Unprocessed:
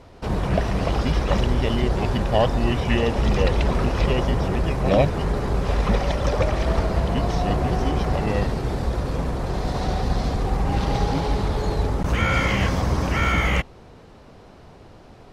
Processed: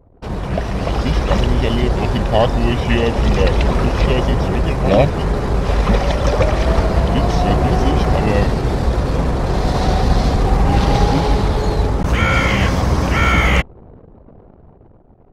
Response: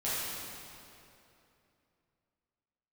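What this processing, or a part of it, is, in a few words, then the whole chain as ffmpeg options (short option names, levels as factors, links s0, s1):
voice memo with heavy noise removal: -af "anlmdn=0.1,dynaudnorm=f=140:g=13:m=3.76"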